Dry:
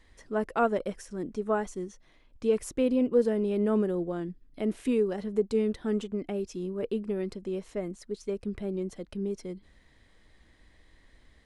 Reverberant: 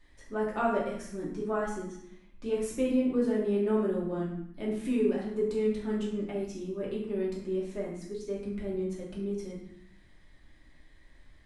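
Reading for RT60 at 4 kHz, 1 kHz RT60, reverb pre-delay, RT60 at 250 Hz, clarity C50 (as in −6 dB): 0.60 s, 0.75 s, 3 ms, 1.0 s, 3.0 dB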